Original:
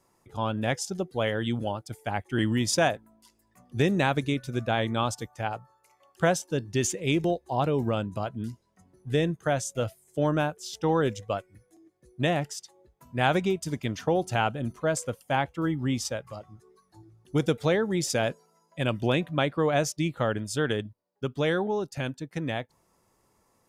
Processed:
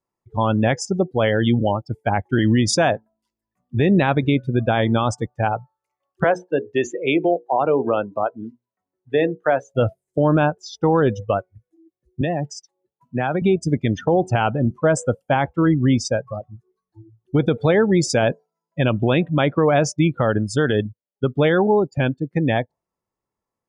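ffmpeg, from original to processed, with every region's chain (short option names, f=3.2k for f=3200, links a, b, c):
-filter_complex "[0:a]asettb=1/sr,asplit=3[a][b][c];[a]atrim=end=6.244[d];[b]atrim=start=6.24:end=9.71,asetpts=PTS-STARTPTS,afade=t=in:d=0.004:c=qsin,afade=t=out:st=3.466:d=0.004:c=qsin,acrossover=split=300 3500:gain=0.141 1 0.251[e][f][g];[e][f][g]amix=inputs=3:normalize=0,bandreject=f=60:t=h:w=6,bandreject=f=120:t=h:w=6,bandreject=f=180:t=h:w=6,bandreject=f=240:t=h:w=6,bandreject=f=300:t=h:w=6,bandreject=f=360:t=h:w=6,bandreject=f=420:t=h:w=6,bandreject=f=480:t=h:w=6[h];[c]atrim=start=9.706[i];[d][h]acrossfade=d=0.004:c1=hsin:c2=qsin[j];[j][i]acrossfade=d=0.004:c1=qsin:c2=hsin,asettb=1/sr,asplit=3[k][l][m];[k]atrim=end=12.214[n];[l]atrim=start=12.21:end=13.42,asetpts=PTS-STARTPTS,afade=t=in:d=0.004:c=qsin,afade=t=out:st=1.206:d=0.004:c=qsin,highpass=f=120:w=0.5412,highpass=f=120:w=1.3066,acompressor=threshold=-29dB:ratio=4:attack=3.2:release=140:knee=1:detection=peak[o];[m]atrim=start=13.416[p];[n][o]acrossfade=d=0.004:c1=hsin:c2=qsin[q];[q][p]acrossfade=d=0.004:c1=qsin:c2=hsin,afftdn=nr=29:nf=-36,highshelf=f=5.2k:g=-9.5,alimiter=level_in=19.5dB:limit=-1dB:release=50:level=0:latency=1,volume=-7.5dB"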